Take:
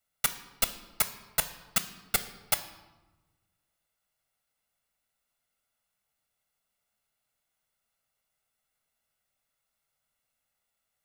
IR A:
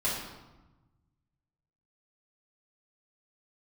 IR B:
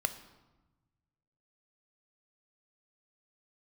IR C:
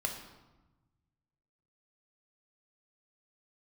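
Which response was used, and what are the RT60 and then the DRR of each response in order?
B; 1.1 s, 1.1 s, 1.1 s; -7.5 dB, 9.0 dB, 2.0 dB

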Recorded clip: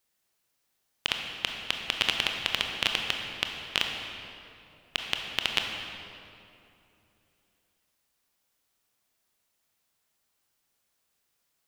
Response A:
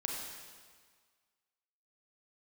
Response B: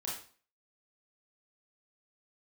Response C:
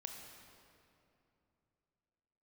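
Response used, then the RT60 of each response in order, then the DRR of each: C; 1.7 s, 0.45 s, 2.8 s; -1.0 dB, -5.5 dB, 2.0 dB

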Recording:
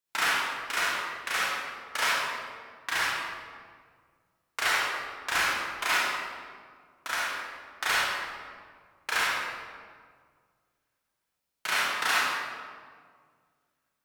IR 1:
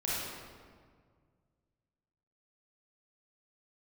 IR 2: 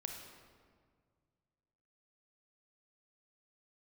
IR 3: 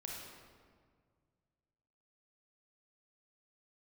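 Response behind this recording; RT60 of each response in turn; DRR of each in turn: 1; 1.8 s, 1.9 s, 1.9 s; -8.0 dB, 2.5 dB, -2.5 dB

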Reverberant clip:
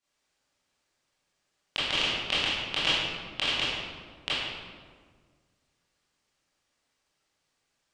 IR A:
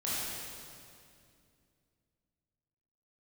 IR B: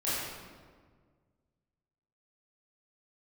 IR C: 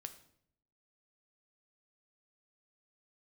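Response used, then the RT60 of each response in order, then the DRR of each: B; 2.4 s, 1.7 s, 0.65 s; -9.0 dB, -11.5 dB, 8.0 dB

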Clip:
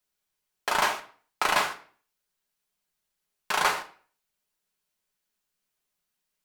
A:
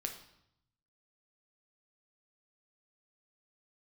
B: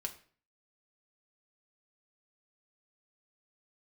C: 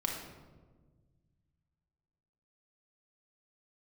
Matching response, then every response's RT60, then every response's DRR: B; 0.75 s, 0.45 s, 1.4 s; 3.5 dB, 3.0 dB, 0.0 dB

